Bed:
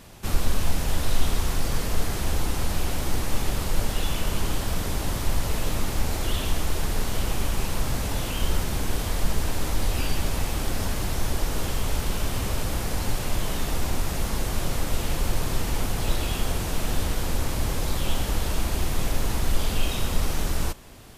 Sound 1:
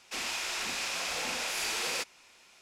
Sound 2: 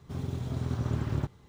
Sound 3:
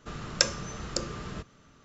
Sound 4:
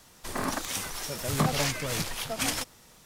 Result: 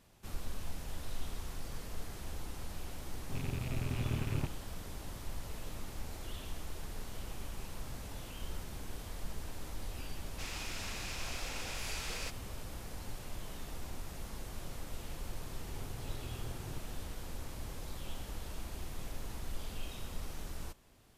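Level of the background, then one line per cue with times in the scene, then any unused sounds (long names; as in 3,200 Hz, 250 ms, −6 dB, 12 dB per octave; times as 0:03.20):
bed −17.5 dB
0:03.20: mix in 2 −5.5 dB + loose part that buzzes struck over −34 dBFS, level −31 dBFS
0:10.27: mix in 1 −9.5 dB
0:15.53: mix in 2 −16.5 dB + comb filter 2.4 ms
not used: 3, 4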